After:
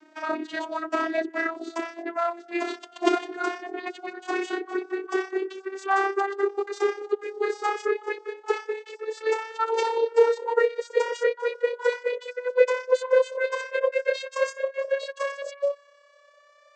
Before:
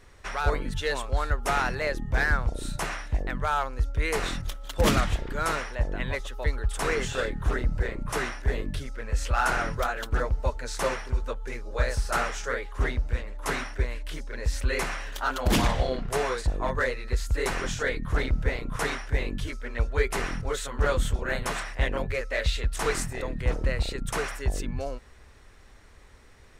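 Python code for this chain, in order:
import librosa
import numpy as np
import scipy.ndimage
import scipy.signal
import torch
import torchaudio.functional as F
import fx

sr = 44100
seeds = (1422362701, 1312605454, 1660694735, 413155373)

y = fx.vocoder_glide(x, sr, note=63, semitones=11)
y = fx.stretch_grains(y, sr, factor=0.63, grain_ms=61.0)
y = F.gain(torch.from_numpy(y), 6.5).numpy()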